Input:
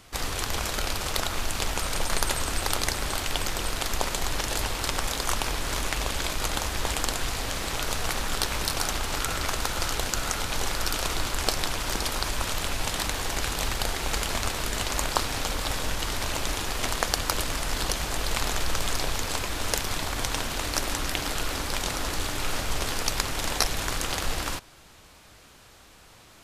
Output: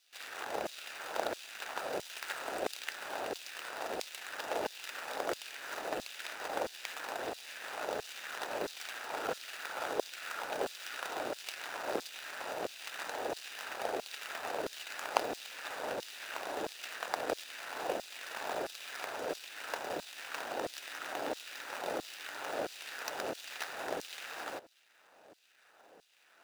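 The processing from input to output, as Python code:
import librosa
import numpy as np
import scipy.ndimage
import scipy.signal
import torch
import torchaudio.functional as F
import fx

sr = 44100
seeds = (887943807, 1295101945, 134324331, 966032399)

y = scipy.signal.medfilt(x, 41)
y = fx.filter_lfo_highpass(y, sr, shape='saw_down', hz=1.5, low_hz=450.0, high_hz=4300.0, q=1.3)
y = F.gain(torch.from_numpy(y), 5.5).numpy()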